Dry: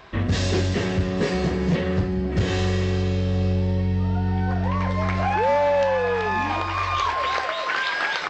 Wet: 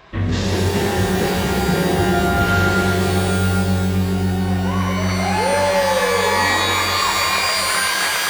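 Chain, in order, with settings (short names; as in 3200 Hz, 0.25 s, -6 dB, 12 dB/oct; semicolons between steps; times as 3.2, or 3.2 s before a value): shimmer reverb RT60 3.2 s, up +12 st, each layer -2 dB, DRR 0 dB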